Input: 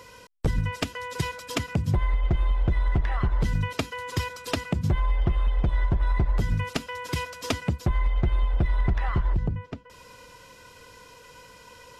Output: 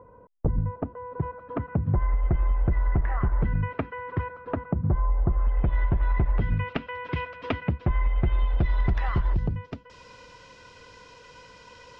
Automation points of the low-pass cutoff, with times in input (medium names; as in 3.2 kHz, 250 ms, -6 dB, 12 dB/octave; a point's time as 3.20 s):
low-pass 24 dB/octave
0.96 s 1 kHz
2.36 s 1.9 kHz
3.94 s 1.9 kHz
4.76 s 1.3 kHz
5.29 s 1.3 kHz
5.73 s 2.7 kHz
8.17 s 2.7 kHz
8.82 s 6.2 kHz